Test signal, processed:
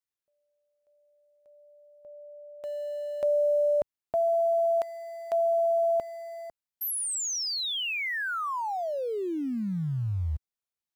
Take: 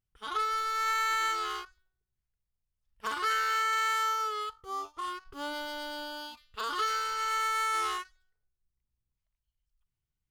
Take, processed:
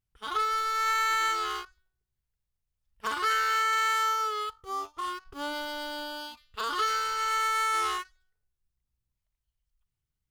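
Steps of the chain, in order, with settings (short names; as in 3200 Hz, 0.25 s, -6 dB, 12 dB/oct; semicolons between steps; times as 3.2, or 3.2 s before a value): bell 78 Hz +2.5 dB 2.2 oct; in parallel at -9.5 dB: sample gate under -40.5 dBFS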